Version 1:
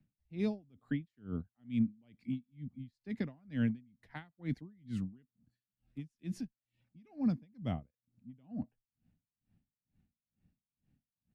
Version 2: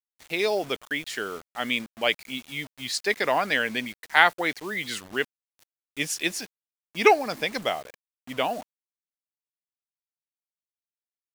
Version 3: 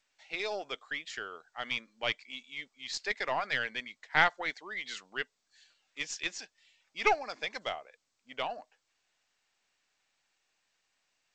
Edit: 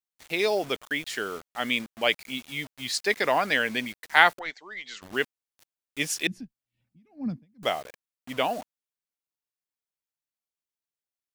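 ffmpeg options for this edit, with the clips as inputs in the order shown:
ffmpeg -i take0.wav -i take1.wav -i take2.wav -filter_complex "[1:a]asplit=3[link_01][link_02][link_03];[link_01]atrim=end=4.392[link_04];[2:a]atrim=start=4.388:end=5.022[link_05];[link_02]atrim=start=5.018:end=6.272[link_06];[0:a]atrim=start=6.268:end=7.632[link_07];[link_03]atrim=start=7.628[link_08];[link_04][link_05]acrossfade=duration=0.004:curve1=hsin:curve2=hsin[link_09];[link_09][link_06]acrossfade=duration=0.004:curve1=hsin:curve2=hsin[link_10];[link_10][link_07]acrossfade=duration=0.004:curve1=hsin:curve2=hsin[link_11];[link_11][link_08]acrossfade=duration=0.004:curve1=hsin:curve2=hsin" out.wav

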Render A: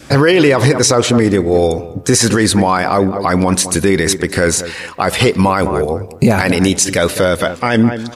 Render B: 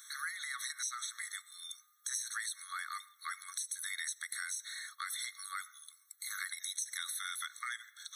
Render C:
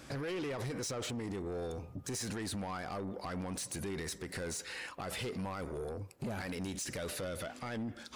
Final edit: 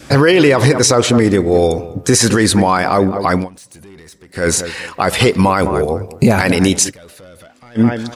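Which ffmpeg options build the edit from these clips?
ffmpeg -i take0.wav -i take1.wav -i take2.wav -filter_complex "[2:a]asplit=2[link_01][link_02];[0:a]asplit=3[link_03][link_04][link_05];[link_03]atrim=end=3.49,asetpts=PTS-STARTPTS[link_06];[link_01]atrim=start=3.33:end=4.49,asetpts=PTS-STARTPTS[link_07];[link_04]atrim=start=4.33:end=6.92,asetpts=PTS-STARTPTS[link_08];[link_02]atrim=start=6.86:end=7.81,asetpts=PTS-STARTPTS[link_09];[link_05]atrim=start=7.75,asetpts=PTS-STARTPTS[link_10];[link_06][link_07]acrossfade=duration=0.16:curve1=tri:curve2=tri[link_11];[link_11][link_08]acrossfade=duration=0.16:curve1=tri:curve2=tri[link_12];[link_12][link_09]acrossfade=duration=0.06:curve1=tri:curve2=tri[link_13];[link_13][link_10]acrossfade=duration=0.06:curve1=tri:curve2=tri" out.wav

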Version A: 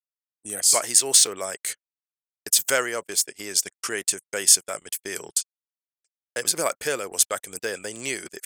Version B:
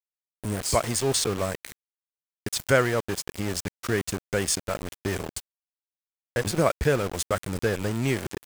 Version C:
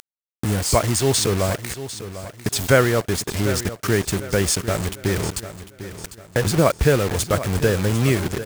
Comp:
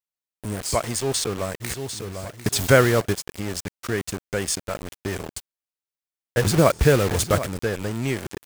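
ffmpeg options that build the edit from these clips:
ffmpeg -i take0.wav -i take1.wav -i take2.wav -filter_complex "[2:a]asplit=2[link_01][link_02];[1:a]asplit=3[link_03][link_04][link_05];[link_03]atrim=end=1.62[link_06];[link_01]atrim=start=1.6:end=3.14[link_07];[link_04]atrim=start=3.12:end=6.372[link_08];[link_02]atrim=start=6.368:end=7.462[link_09];[link_05]atrim=start=7.458[link_10];[link_06][link_07]acrossfade=duration=0.02:curve1=tri:curve2=tri[link_11];[link_11][link_08]acrossfade=duration=0.02:curve1=tri:curve2=tri[link_12];[link_12][link_09]acrossfade=duration=0.004:curve1=hsin:curve2=hsin[link_13];[link_13][link_10]acrossfade=duration=0.004:curve1=hsin:curve2=hsin" out.wav

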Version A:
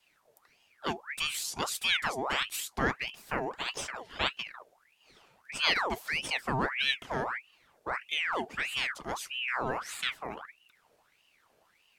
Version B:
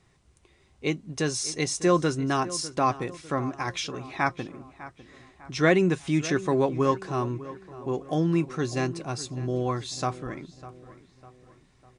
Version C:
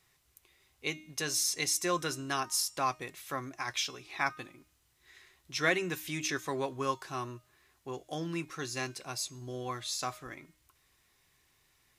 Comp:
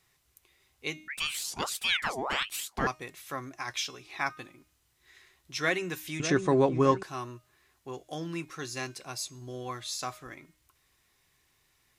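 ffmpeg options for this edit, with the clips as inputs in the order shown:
ffmpeg -i take0.wav -i take1.wav -i take2.wav -filter_complex "[2:a]asplit=3[link_01][link_02][link_03];[link_01]atrim=end=1.082[link_04];[0:a]atrim=start=1.078:end=2.872[link_05];[link_02]atrim=start=2.868:end=6.202[link_06];[1:a]atrim=start=6.198:end=7.032[link_07];[link_03]atrim=start=7.028[link_08];[link_04][link_05]acrossfade=duration=0.004:curve1=hsin:curve2=hsin[link_09];[link_09][link_06]acrossfade=duration=0.004:curve1=hsin:curve2=hsin[link_10];[link_10][link_07]acrossfade=duration=0.004:curve1=hsin:curve2=hsin[link_11];[link_11][link_08]acrossfade=duration=0.004:curve1=hsin:curve2=hsin" out.wav

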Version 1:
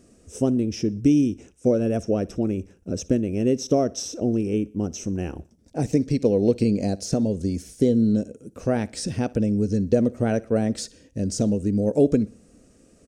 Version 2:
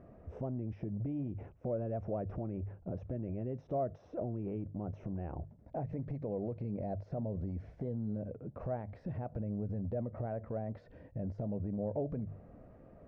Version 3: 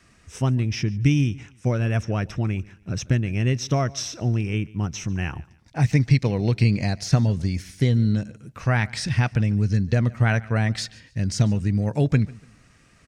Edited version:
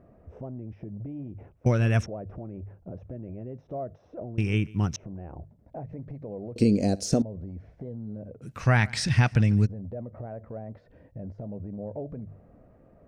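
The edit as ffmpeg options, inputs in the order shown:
ffmpeg -i take0.wav -i take1.wav -i take2.wav -filter_complex "[2:a]asplit=3[link_01][link_02][link_03];[1:a]asplit=5[link_04][link_05][link_06][link_07][link_08];[link_04]atrim=end=1.662[link_09];[link_01]atrim=start=1.658:end=2.062[link_10];[link_05]atrim=start=2.058:end=4.382[link_11];[link_02]atrim=start=4.378:end=4.962[link_12];[link_06]atrim=start=4.958:end=6.562[link_13];[0:a]atrim=start=6.558:end=7.222[link_14];[link_07]atrim=start=7.218:end=8.43[link_15];[link_03]atrim=start=8.41:end=9.67[link_16];[link_08]atrim=start=9.65[link_17];[link_09][link_10]acrossfade=duration=0.004:curve1=hsin:curve2=hsin[link_18];[link_18][link_11]acrossfade=duration=0.004:curve1=hsin:curve2=hsin[link_19];[link_19][link_12]acrossfade=duration=0.004:curve1=hsin:curve2=hsin[link_20];[link_20][link_13]acrossfade=duration=0.004:curve1=hsin:curve2=hsin[link_21];[link_21][link_14]acrossfade=duration=0.004:curve1=hsin:curve2=hsin[link_22];[link_22][link_15]acrossfade=duration=0.004:curve1=hsin:curve2=hsin[link_23];[link_23][link_16]acrossfade=duration=0.02:curve1=tri:curve2=tri[link_24];[link_24][link_17]acrossfade=duration=0.02:curve1=tri:curve2=tri" out.wav

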